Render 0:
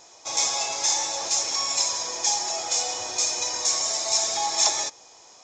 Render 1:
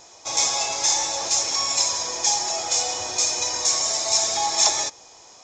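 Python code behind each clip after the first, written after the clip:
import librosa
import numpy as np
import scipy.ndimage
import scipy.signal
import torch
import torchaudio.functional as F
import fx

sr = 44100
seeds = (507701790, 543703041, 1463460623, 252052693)

y = fx.low_shelf(x, sr, hz=120.0, db=8.0)
y = F.gain(torch.from_numpy(y), 2.5).numpy()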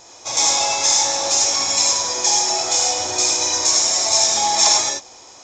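y = fx.rev_gated(x, sr, seeds[0], gate_ms=120, shape='rising', drr_db=0.5)
y = F.gain(torch.from_numpy(y), 2.5).numpy()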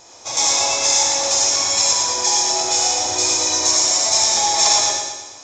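y = fx.echo_feedback(x, sr, ms=116, feedback_pct=51, wet_db=-5)
y = F.gain(torch.from_numpy(y), -1.0).numpy()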